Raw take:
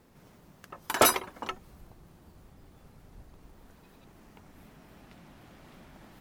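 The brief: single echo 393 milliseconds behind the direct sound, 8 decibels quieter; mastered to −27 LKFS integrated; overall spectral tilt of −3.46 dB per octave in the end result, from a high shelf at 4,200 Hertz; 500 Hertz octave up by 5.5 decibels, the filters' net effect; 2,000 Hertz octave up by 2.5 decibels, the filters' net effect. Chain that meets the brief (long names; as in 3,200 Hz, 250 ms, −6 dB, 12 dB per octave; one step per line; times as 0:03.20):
parametric band 500 Hz +7 dB
parametric band 2,000 Hz +4.5 dB
high-shelf EQ 4,200 Hz −8.5 dB
single-tap delay 393 ms −8 dB
level −1.5 dB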